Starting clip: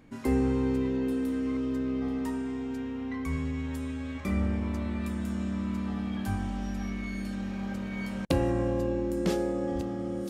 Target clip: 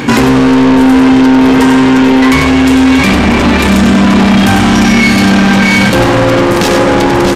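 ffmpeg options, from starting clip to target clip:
-filter_complex "[0:a]atempo=1.4,equalizer=f=125:t=o:w=0.33:g=10,equalizer=f=630:t=o:w=0.33:g=-11,equalizer=f=1.25k:t=o:w=0.33:g=-5,equalizer=f=2k:t=o:w=0.33:g=-4,equalizer=f=10k:t=o:w=0.33:g=-5,asplit=2[a][b];[b]aecho=0:1:636|1272|1908|2544|3180|3816:0.251|0.143|0.0816|0.0465|0.0265|0.0151[c];[a][c]amix=inputs=2:normalize=0,asplit=2[d][e];[e]highpass=f=720:p=1,volume=38dB,asoftclip=type=tanh:threshold=-11.5dB[f];[d][f]amix=inputs=2:normalize=0,lowpass=f=5.2k:p=1,volume=-6dB,asplit=2[g][h];[h]aecho=0:1:96:0.501[i];[g][i]amix=inputs=2:normalize=0,aresample=32000,aresample=44100,alimiter=level_in=16.5dB:limit=-1dB:release=50:level=0:latency=1,volume=-1dB"

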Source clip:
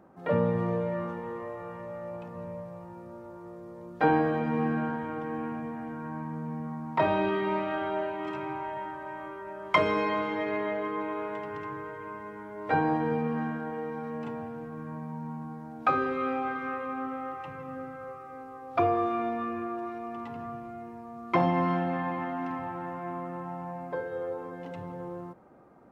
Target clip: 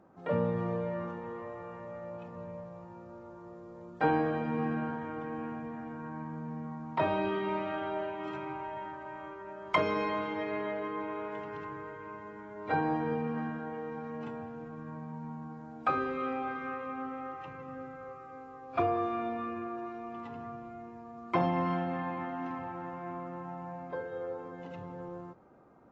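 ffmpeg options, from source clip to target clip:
-af "equalizer=f=1.9k:w=5.5:g=-2,volume=-4dB" -ar 24000 -c:a aac -b:a 24k

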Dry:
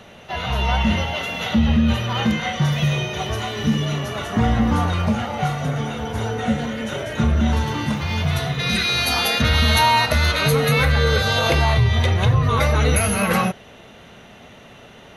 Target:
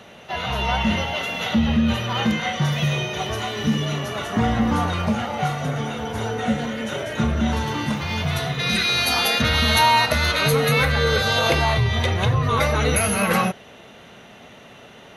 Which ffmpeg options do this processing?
-af "lowshelf=f=75:g=-11.5"

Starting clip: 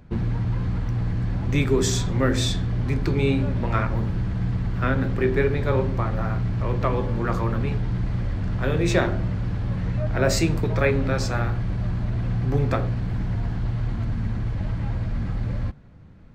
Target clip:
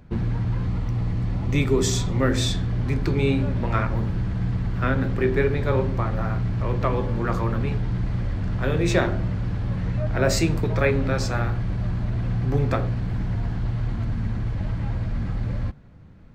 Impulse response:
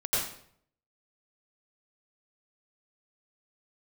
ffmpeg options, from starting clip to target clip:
-filter_complex "[0:a]asettb=1/sr,asplit=3[a][b][c];[a]atrim=end=0.664[d];[b]atrim=start=0.66:end=2.22,asetpts=PTS-STARTPTS,afade=t=in:d=0.004:c=qsin,afade=t=out:st=1.556:d=0.004:c=qsin,bandreject=f=1.6k:w=7.2[e];[c]atrim=start=2.216[f];[d][e]acrossfade=d=0.004:c1=hsin:c2=qsin[g];[g][f]acrossfade=d=0.004:c1=qsin:c2=hsin"

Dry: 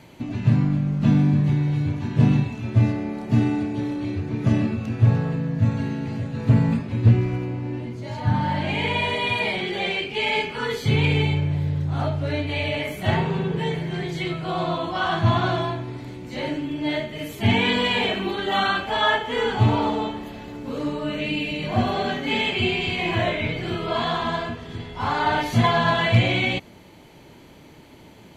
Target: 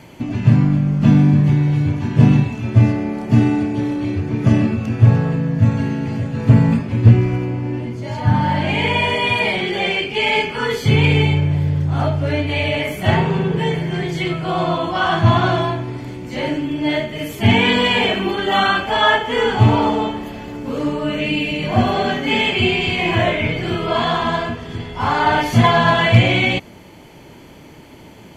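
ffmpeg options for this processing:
-af "bandreject=f=3.9k:w=7.9,volume=6dB"

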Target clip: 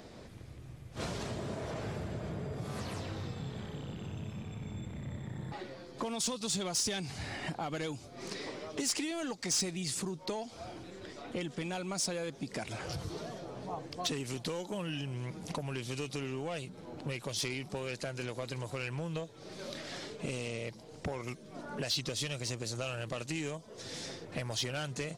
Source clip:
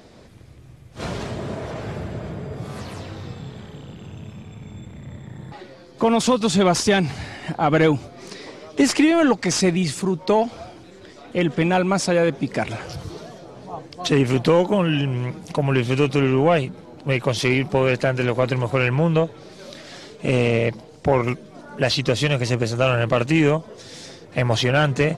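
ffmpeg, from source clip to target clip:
-filter_complex "[0:a]acrossover=split=4200[a][b];[a]acompressor=threshold=-31dB:ratio=10[c];[c][b]amix=inputs=2:normalize=0,asoftclip=type=tanh:threshold=-20.5dB,volume=-3.5dB"

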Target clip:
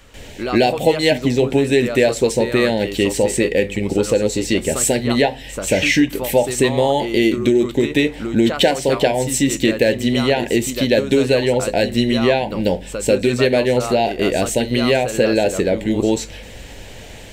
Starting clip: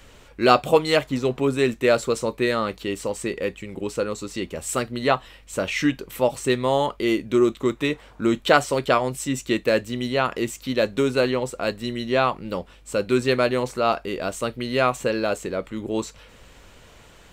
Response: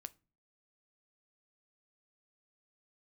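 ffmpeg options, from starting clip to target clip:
-filter_complex "[0:a]acompressor=threshold=-25dB:ratio=4,asplit=2[a][b];[b]asuperstop=centerf=1200:order=8:qfactor=1.8[c];[1:a]atrim=start_sample=2205,asetrate=37926,aresample=44100,adelay=141[d];[c][d]afir=irnorm=-1:irlink=0,volume=15.5dB[e];[a][e]amix=inputs=2:normalize=0,volume=1.5dB"

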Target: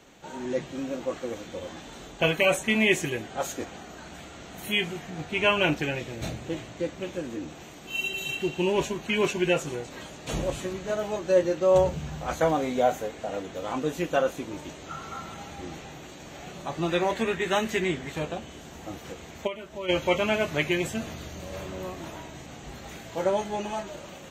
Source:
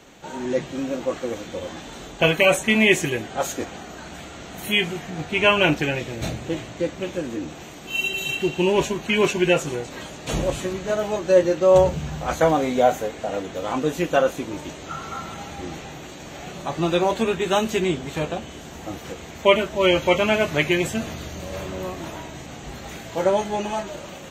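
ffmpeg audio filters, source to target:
-filter_complex "[0:a]asettb=1/sr,asplit=3[a][b][c];[a]atrim=end=16.894[d];[b]atrim=start=16.89:end=18.12,asetpts=PTS-STARTPTS,afade=t=in:d=0.004:c=qsin,afade=t=out:st=1.226:d=0.004:c=qsin,equalizer=f=1.9k:w=2.9:g=10[e];[c]atrim=start=18.116[f];[d][e]acrossfade=d=0.004:c1=hsin:c2=qsin[g];[g][f]acrossfade=d=0.004:c1=qsin:c2=hsin,asplit=3[h][i][j];[h]afade=t=out:st=19.46:d=0.02[k];[i]acompressor=threshold=-29dB:ratio=4,afade=t=in:st=19.46:d=0.02,afade=t=out:st=19.88:d=0.02[l];[j]afade=t=in:st=19.88:d=0.02[m];[k][l][m]amix=inputs=3:normalize=0,volume=-5.5dB"

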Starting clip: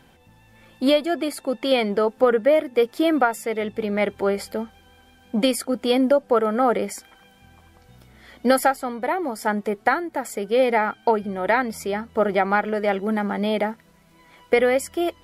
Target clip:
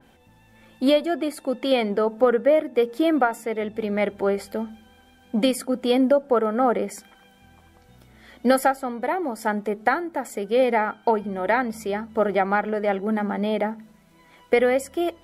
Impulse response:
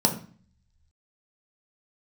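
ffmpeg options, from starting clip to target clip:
-filter_complex "[0:a]asplit=2[a][b];[1:a]atrim=start_sample=2205[c];[b][c]afir=irnorm=-1:irlink=0,volume=-30.5dB[d];[a][d]amix=inputs=2:normalize=0,adynamicequalizer=threshold=0.0178:dfrequency=2300:dqfactor=0.7:tfrequency=2300:tqfactor=0.7:attack=5:release=100:ratio=0.375:range=3:mode=cutabove:tftype=highshelf,volume=-2dB"

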